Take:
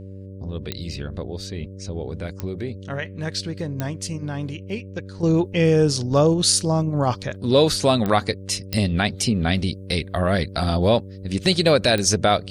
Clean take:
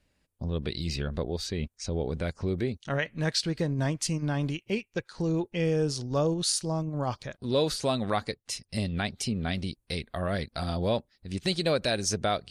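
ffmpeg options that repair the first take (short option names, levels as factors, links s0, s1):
-af "adeclick=t=4,bandreject=f=96.5:t=h:w=4,bandreject=f=193:t=h:w=4,bandreject=f=289.5:t=h:w=4,bandreject=f=386:t=h:w=4,bandreject=f=482.5:t=h:w=4,bandreject=f=579:t=h:w=4,asetnsamples=n=441:p=0,asendcmd='5.23 volume volume -9.5dB',volume=1"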